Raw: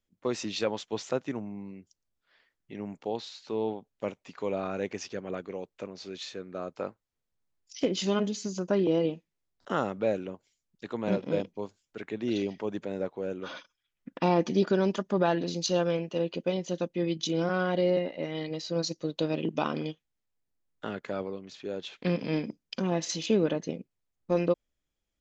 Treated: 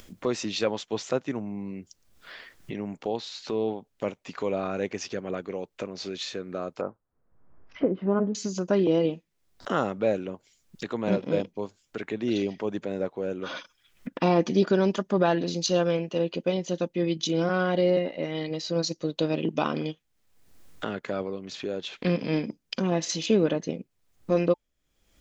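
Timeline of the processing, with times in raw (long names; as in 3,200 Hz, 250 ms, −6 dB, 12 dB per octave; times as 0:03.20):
0:06.81–0:08.35: low-pass filter 1,400 Hz 24 dB per octave
whole clip: notch filter 880 Hz, Q 26; upward compression, threshold −31 dBFS; level +3 dB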